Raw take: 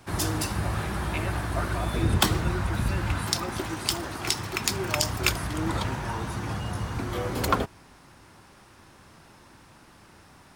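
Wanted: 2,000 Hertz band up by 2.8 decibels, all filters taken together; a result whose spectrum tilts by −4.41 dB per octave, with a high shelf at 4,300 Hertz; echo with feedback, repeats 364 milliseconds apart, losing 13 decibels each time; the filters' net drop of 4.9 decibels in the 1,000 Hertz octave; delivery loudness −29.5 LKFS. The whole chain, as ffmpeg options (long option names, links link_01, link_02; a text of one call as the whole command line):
ffmpeg -i in.wav -af "equalizer=frequency=1000:width_type=o:gain=-8.5,equalizer=frequency=2000:width_type=o:gain=7.5,highshelf=frequency=4300:gain=-5.5,aecho=1:1:364|728|1092:0.224|0.0493|0.0108,volume=-1dB" out.wav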